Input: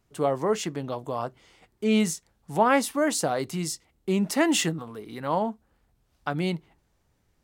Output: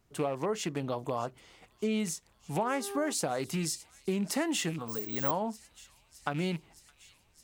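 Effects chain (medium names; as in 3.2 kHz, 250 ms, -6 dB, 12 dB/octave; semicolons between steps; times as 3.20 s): rattle on loud lows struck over -30 dBFS, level -31 dBFS; 2.61–3.11 s: mains buzz 400 Hz, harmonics 4, -36 dBFS -8 dB/octave; compression, threshold -28 dBFS, peak gain reduction 12 dB; on a send: feedback echo behind a high-pass 615 ms, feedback 74%, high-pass 3 kHz, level -16.5 dB; 4.88–5.31 s: on the sum: careless resampling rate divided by 2×, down filtered, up zero stuff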